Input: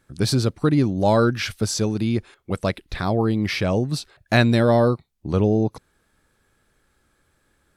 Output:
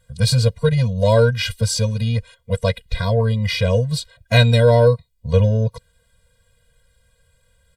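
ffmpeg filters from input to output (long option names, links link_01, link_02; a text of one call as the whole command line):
ffmpeg -i in.wav -af "aeval=exprs='0.668*(cos(1*acos(clip(val(0)/0.668,-1,1)))-cos(1*PI/2))+0.00944*(cos(7*acos(clip(val(0)/0.668,-1,1)))-cos(7*PI/2))':channel_layout=same,aecho=1:1:2.4:0.62,afftfilt=real='re*eq(mod(floor(b*sr/1024/230),2),0)':imag='im*eq(mod(floor(b*sr/1024/230),2),0)':win_size=1024:overlap=0.75,volume=6.5dB" out.wav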